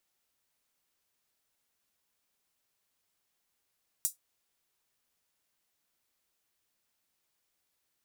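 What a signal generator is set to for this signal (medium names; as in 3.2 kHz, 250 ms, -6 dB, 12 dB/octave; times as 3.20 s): closed hi-hat, high-pass 7.6 kHz, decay 0.14 s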